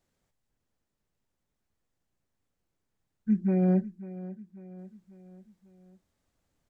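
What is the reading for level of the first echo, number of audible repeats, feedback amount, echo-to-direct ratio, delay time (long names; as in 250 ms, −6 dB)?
−16.0 dB, 4, 50%, −15.0 dB, 544 ms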